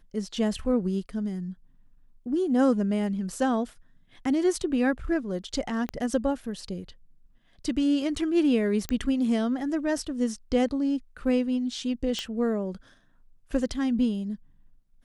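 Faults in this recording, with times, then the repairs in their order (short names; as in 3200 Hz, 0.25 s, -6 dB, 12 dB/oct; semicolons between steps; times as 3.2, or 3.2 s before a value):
5.89 pop -19 dBFS
8.89 pop -14 dBFS
12.19 pop -17 dBFS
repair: de-click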